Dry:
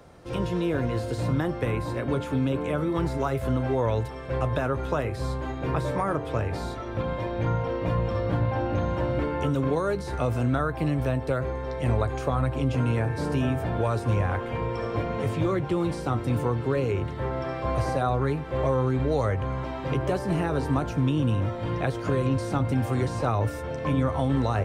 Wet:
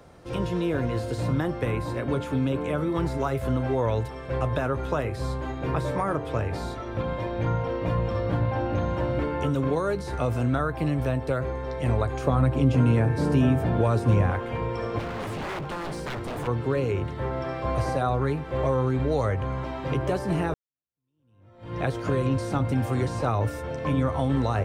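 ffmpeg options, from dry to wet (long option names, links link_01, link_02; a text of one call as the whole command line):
ffmpeg -i in.wav -filter_complex "[0:a]asettb=1/sr,asplit=3[link_01][link_02][link_03];[link_01]atrim=end=12.244[link_04];[link_02]atrim=start=12.24:end=14.31,asetpts=PTS-STARTPTS,afade=type=in:duration=0.004:curve=qsin,afade=type=out:start_time=2.066:duration=0.004:curve=qsin,equalizer=frequency=200:width_type=o:width=2.3:gain=6[link_05];[link_03]atrim=start=14.306[link_06];[link_04][link_05]acrossfade=duration=0.004:curve1=hsin:curve2=qsin[link_07];[link_07][link_06]acrossfade=duration=0.004:curve1=qsin:curve2=hsin,asplit=3[link_08][link_09][link_10];[link_08]afade=type=out:start_time=14.98:duration=0.02[link_11];[link_09]aeval=exprs='0.0447*(abs(mod(val(0)/0.0447+3,4)-2)-1)':channel_layout=same,afade=type=in:start_time=14.98:duration=0.02,afade=type=out:start_time=16.46:duration=0.02[link_12];[link_10]afade=type=in:start_time=16.46:duration=0.02[link_13];[link_11][link_12][link_13]amix=inputs=3:normalize=0,asplit=2[link_14][link_15];[link_14]atrim=end=20.54,asetpts=PTS-STARTPTS,afade=type=out:start_time=20.536:duration=0.004:curve=hsin[link_16];[link_15]atrim=start=20.54,asetpts=PTS-STARTPTS,afade=type=in:duration=1.26:curve=exp[link_17];[link_16][link_17]concat=n=2:v=0:a=1" out.wav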